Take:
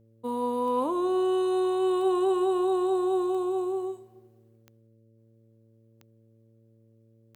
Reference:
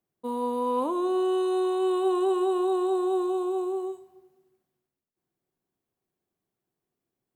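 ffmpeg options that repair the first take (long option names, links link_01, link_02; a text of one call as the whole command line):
ffmpeg -i in.wav -af "adeclick=threshold=4,bandreject=frequency=112.7:width_type=h:width=4,bandreject=frequency=225.4:width_type=h:width=4,bandreject=frequency=338.1:width_type=h:width=4,bandreject=frequency=450.8:width_type=h:width=4,bandreject=frequency=563.5:width_type=h:width=4" out.wav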